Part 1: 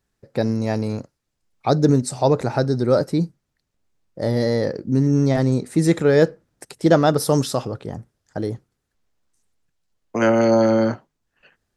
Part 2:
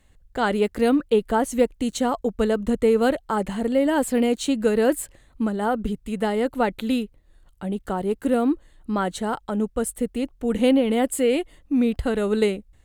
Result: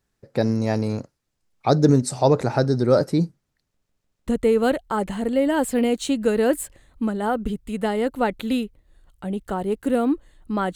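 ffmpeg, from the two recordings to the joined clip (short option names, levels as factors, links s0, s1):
-filter_complex "[0:a]apad=whole_dur=10.75,atrim=end=10.75,asplit=4[s0][s1][s2][s3];[s0]atrim=end=3.822[s4];[s1]atrim=start=3.668:end=3.822[s5];[s2]atrim=start=3.668:end=3.822[s6];[s3]atrim=start=3.668:end=3.822[s7];[1:a]atrim=start=2.658:end=9.14[s8];[s4][s5]acrossfade=d=0.004:c1=hsin:c2=hsin[s9];[s9][s6]acrossfade=d=0.004:c1=hsin:c2=hsin[s10];[s10][s7]acrossfade=d=0.004:c1=hsin:c2=hsin[s11];[s11][s8]acrossfade=d=0.004:c1=hsin:c2=hsin"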